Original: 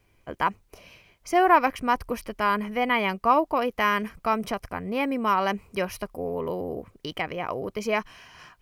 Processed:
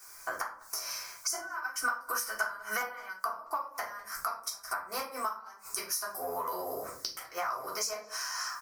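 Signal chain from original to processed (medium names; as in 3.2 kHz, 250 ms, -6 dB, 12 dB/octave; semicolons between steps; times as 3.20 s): tilt EQ +4 dB/octave; inverted gate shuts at -15 dBFS, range -32 dB; speakerphone echo 200 ms, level -26 dB; reverberation RT60 0.35 s, pre-delay 3 ms, DRR -6.5 dB; overdrive pedal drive 10 dB, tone 2.1 kHz, clips at -7.5 dBFS; FFT filter 100 Hz 0 dB, 230 Hz -10 dB, 790 Hz 0 dB, 1.4 kHz +10 dB, 2.9 kHz -16 dB, 5.4 kHz +15 dB; compression 6:1, threshold -33 dBFS, peak gain reduction 20.5 dB; 1.31–3.44 s: small resonant body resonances 1.5/3 kHz, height 14 dB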